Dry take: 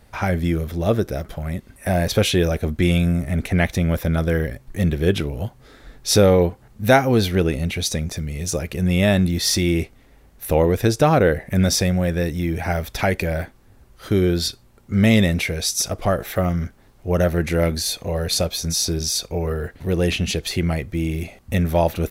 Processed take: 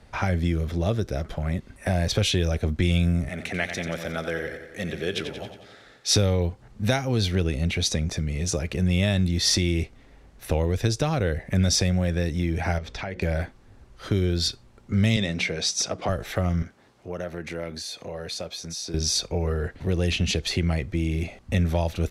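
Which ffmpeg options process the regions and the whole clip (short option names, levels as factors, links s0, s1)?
-filter_complex "[0:a]asettb=1/sr,asplit=3[s0][s1][s2];[s0]atrim=end=3.284[s3];[s1]atrim=start=3.28:end=6.16,asetpts=PTS-STARTPTS,afade=t=in:d=0.004:c=qsin,afade=t=out:st=2.876:d=0.004:c=qsin,highpass=f=710:p=1,equalizer=f=990:t=o:w=0.25:g=-6.5,aecho=1:1:90|180|270|360|450|540|630:0.335|0.194|0.113|0.0654|0.0379|0.022|0.0128,atrim=end_sample=127008[s4];[s2]atrim=start=6.156[s5];[s3][s4]acrossfade=d=0.004:c1=hsin:c2=qsin[s6];[s6][s5]acrossfade=d=0.004:c1=qsin:c2=hsin,asettb=1/sr,asplit=3[s7][s8][s9];[s7]atrim=end=12.784[s10];[s8]atrim=start=12.78:end=13.22,asetpts=PTS-STARTPTS,afade=t=in:d=0.004:c=qsin,afade=t=out:st=0.436:d=0.004:c=qsin,lowpass=6300,bandreject=f=60:t=h:w=6,bandreject=f=120:t=h:w=6,bandreject=f=180:t=h:w=6,bandreject=f=240:t=h:w=6,bandreject=f=300:t=h:w=6,bandreject=f=360:t=h:w=6,bandreject=f=420:t=h:w=6,bandreject=f=480:t=h:w=6,bandreject=f=540:t=h:w=6,acompressor=threshold=0.0282:ratio=4:attack=3.2:release=140:knee=1:detection=peak[s11];[s9]atrim=start=13.216[s12];[s10][s11]acrossfade=d=0.004:c1=hsin:c2=qsin[s13];[s13][s12]acrossfade=d=0.004:c1=qsin:c2=hsin,asettb=1/sr,asplit=3[s14][s15][s16];[s14]atrim=end=15.164[s17];[s15]atrim=start=15.16:end=16.09,asetpts=PTS-STARTPTS,afade=t=in:d=0.004:c=qsin,afade=t=out:st=0.926:d=0.004:c=qsin,highpass=170,lowpass=7200,bandreject=f=60:t=h:w=6,bandreject=f=120:t=h:w=6,bandreject=f=180:t=h:w=6,bandreject=f=240:t=h:w=6,bandreject=f=300:t=h:w=6[s18];[s16]atrim=start=16.086[s19];[s17][s18]acrossfade=d=0.004:c1=hsin:c2=qsin[s20];[s20][s19]acrossfade=d=0.004:c1=qsin:c2=hsin,asettb=1/sr,asplit=3[s21][s22][s23];[s21]atrim=end=16.624[s24];[s22]atrim=start=16.62:end=18.94,asetpts=PTS-STARTPTS,afade=t=in:d=0.004:c=qsin,afade=t=out:st=2.316:d=0.004:c=qsin,highpass=68,lowshelf=f=140:g=-11.5,acompressor=threshold=0.0141:ratio=2:attack=3.2:release=140:knee=1:detection=peak[s25];[s23]atrim=start=18.936[s26];[s24][s25]acrossfade=d=0.004:c1=hsin:c2=qsin[s27];[s27][s26]acrossfade=d=0.004:c1=qsin:c2=hsin,lowpass=7100,acrossover=split=120|3000[s28][s29][s30];[s29]acompressor=threshold=0.0562:ratio=4[s31];[s28][s31][s30]amix=inputs=3:normalize=0"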